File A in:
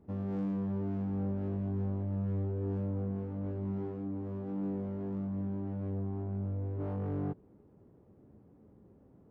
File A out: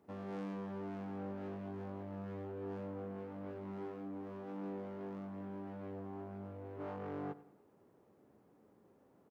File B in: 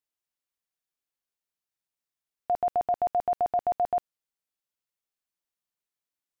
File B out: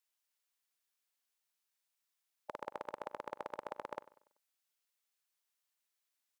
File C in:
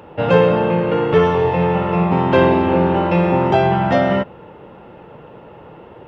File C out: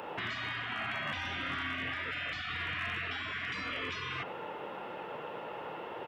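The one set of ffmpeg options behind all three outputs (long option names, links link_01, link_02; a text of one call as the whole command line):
ffmpeg -i in.wav -filter_complex "[0:a]highpass=frequency=1100:poles=1,afftfilt=real='re*lt(hypot(re,im),0.0562)':imag='im*lt(hypot(re,im),0.0562)':win_size=1024:overlap=0.75,acrossover=split=2700[link_01][link_02];[link_02]acompressor=threshold=-56dB:ratio=4:attack=1:release=60[link_03];[link_01][link_03]amix=inputs=2:normalize=0,asoftclip=type=hard:threshold=-33dB,asplit=2[link_04][link_05];[link_05]adelay=96,lowpass=frequency=3600:poles=1,volume=-17dB,asplit=2[link_06][link_07];[link_07]adelay=96,lowpass=frequency=3600:poles=1,volume=0.45,asplit=2[link_08][link_09];[link_09]adelay=96,lowpass=frequency=3600:poles=1,volume=0.45,asplit=2[link_10][link_11];[link_11]adelay=96,lowpass=frequency=3600:poles=1,volume=0.45[link_12];[link_04][link_06][link_08][link_10][link_12]amix=inputs=5:normalize=0,volume=5dB" out.wav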